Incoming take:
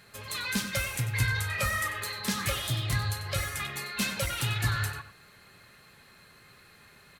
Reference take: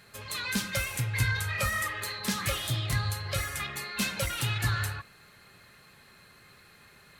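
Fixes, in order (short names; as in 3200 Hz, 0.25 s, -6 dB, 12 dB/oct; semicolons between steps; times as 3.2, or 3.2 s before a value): inverse comb 94 ms -13 dB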